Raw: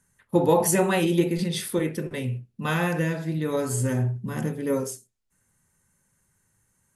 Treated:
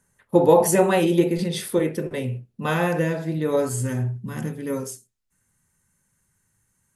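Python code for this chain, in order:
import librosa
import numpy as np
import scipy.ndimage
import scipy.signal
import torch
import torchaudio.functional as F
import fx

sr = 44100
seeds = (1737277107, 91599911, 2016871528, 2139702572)

y = fx.peak_eq(x, sr, hz=560.0, db=fx.steps((0.0, 6.0), (3.69, -3.5)), octaves=1.6)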